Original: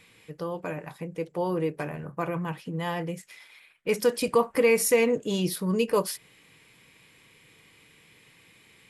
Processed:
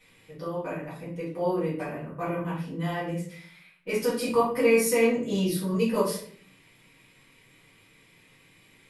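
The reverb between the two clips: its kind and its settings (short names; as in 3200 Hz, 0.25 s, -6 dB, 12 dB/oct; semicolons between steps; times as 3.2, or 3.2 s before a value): shoebox room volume 63 m³, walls mixed, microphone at 1.9 m; gain -10 dB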